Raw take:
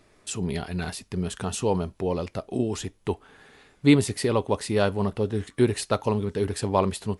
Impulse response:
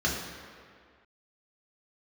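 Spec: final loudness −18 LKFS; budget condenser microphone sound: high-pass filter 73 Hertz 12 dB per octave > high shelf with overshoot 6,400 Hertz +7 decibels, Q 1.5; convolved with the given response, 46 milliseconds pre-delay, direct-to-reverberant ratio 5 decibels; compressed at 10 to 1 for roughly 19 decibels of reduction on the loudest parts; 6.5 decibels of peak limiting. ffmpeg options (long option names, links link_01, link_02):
-filter_complex "[0:a]acompressor=threshold=-32dB:ratio=10,alimiter=level_in=3dB:limit=-24dB:level=0:latency=1,volume=-3dB,asplit=2[link_01][link_02];[1:a]atrim=start_sample=2205,adelay=46[link_03];[link_02][link_03]afir=irnorm=-1:irlink=0,volume=-16dB[link_04];[link_01][link_04]amix=inputs=2:normalize=0,highpass=73,highshelf=frequency=6400:width_type=q:width=1.5:gain=7,volume=17.5dB"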